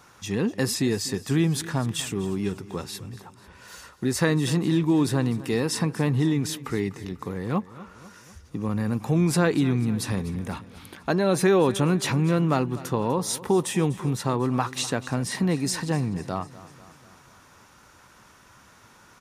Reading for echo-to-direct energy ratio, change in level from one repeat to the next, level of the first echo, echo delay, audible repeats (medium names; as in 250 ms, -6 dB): -16.0 dB, -5.0 dB, -17.5 dB, 247 ms, 4